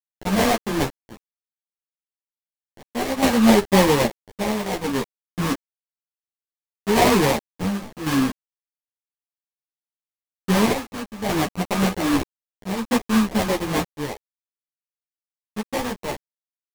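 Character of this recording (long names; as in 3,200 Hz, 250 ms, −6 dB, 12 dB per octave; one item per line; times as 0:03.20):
a quantiser's noise floor 6 bits, dither none
chopped level 0.62 Hz, depth 60%, duty 60%
aliases and images of a low sample rate 1,400 Hz, jitter 20%
a shimmering, thickened sound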